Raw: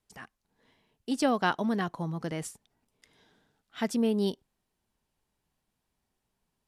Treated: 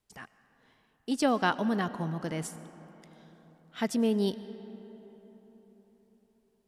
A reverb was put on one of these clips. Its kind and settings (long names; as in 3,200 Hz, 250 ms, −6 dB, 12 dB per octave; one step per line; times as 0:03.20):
comb and all-pass reverb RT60 4.3 s, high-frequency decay 0.5×, pre-delay 65 ms, DRR 14.5 dB